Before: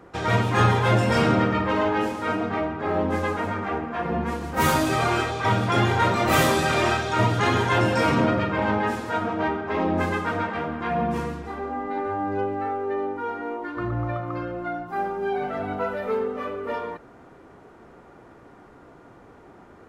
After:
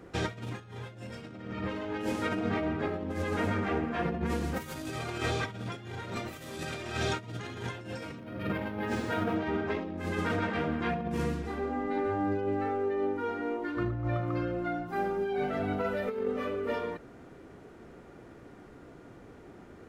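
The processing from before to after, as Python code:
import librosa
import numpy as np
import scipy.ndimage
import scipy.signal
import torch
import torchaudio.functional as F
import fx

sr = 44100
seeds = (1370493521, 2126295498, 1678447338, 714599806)

y = fx.peak_eq(x, sr, hz=970.0, db=-8.5, octaves=1.3)
y = fx.over_compress(y, sr, threshold_db=-29.0, ratio=-0.5)
y = fx.resample_linear(y, sr, factor=3, at=(8.18, 9.36))
y = y * 10.0 ** (-3.0 / 20.0)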